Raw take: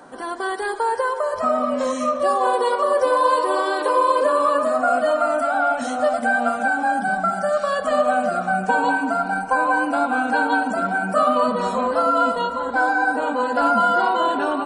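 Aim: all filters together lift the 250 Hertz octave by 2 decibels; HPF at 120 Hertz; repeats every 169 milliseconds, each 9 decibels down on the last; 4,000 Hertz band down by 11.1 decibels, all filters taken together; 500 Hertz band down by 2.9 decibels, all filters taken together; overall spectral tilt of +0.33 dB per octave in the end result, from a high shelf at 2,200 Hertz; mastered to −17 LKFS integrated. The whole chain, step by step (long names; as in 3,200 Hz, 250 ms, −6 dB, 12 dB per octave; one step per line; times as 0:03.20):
high-pass filter 120 Hz
parametric band 250 Hz +3.5 dB
parametric band 500 Hz −3.5 dB
high-shelf EQ 2,200 Hz −7 dB
parametric band 4,000 Hz −8.5 dB
repeating echo 169 ms, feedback 35%, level −9 dB
level +4.5 dB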